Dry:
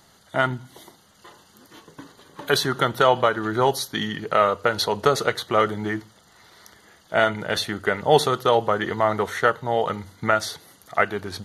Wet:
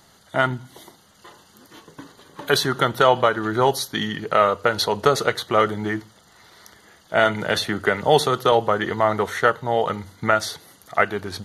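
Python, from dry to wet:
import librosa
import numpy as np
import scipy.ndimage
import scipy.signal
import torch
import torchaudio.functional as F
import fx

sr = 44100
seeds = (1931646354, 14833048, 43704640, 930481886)

y = fx.band_squash(x, sr, depth_pct=40, at=(7.25, 8.52))
y = y * 10.0 ** (1.5 / 20.0)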